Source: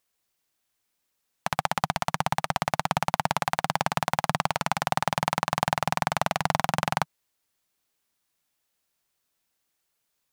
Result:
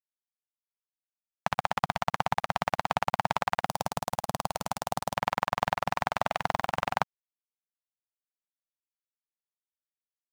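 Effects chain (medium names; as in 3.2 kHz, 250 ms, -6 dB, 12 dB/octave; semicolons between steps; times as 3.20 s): peaking EQ 12 kHz -12 dB 1.8 oct, from 3.65 s 2 kHz, from 5.16 s 11 kHz; harmonic-percussive split harmonic -15 dB; bit crusher 9-bit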